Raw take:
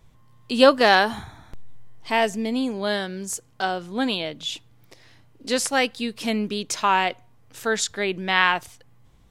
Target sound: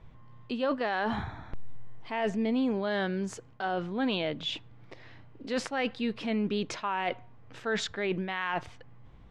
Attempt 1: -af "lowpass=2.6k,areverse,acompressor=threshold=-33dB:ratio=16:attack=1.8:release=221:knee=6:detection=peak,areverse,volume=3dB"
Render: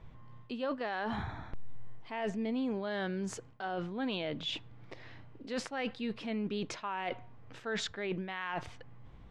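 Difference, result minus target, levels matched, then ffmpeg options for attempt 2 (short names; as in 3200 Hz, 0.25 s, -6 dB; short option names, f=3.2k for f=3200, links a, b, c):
compressor: peak gain reduction +6 dB
-af "lowpass=2.6k,areverse,acompressor=threshold=-26.5dB:ratio=16:attack=1.8:release=221:knee=6:detection=peak,areverse,volume=3dB"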